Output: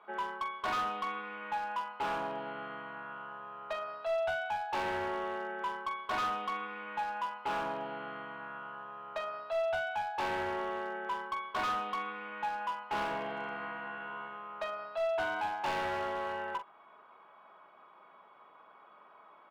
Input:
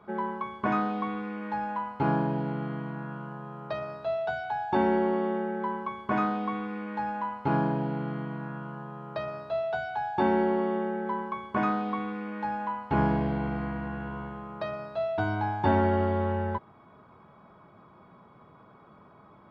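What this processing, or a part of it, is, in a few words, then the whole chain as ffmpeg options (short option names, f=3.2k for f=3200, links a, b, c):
megaphone: -filter_complex "[0:a]highpass=690,lowpass=3.5k,equalizer=f=2.9k:t=o:w=0.38:g=6.5,asoftclip=type=hard:threshold=-30dB,asplit=2[a][b];[b]adelay=44,volume=-9.5dB[c];[a][c]amix=inputs=2:normalize=0"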